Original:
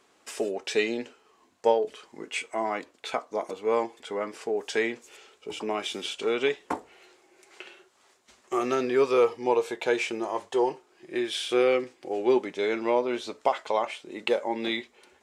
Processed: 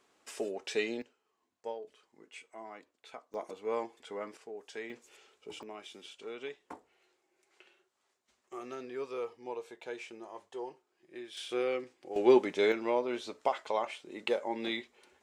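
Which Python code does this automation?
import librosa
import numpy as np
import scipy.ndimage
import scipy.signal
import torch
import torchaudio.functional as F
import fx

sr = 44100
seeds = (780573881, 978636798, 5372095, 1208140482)

y = fx.gain(x, sr, db=fx.steps((0.0, -7.0), (1.02, -18.0), (3.34, -9.0), (4.37, -16.0), (4.9, -9.0), (5.63, -16.5), (11.37, -10.0), (12.16, 0.0), (12.72, -6.0)))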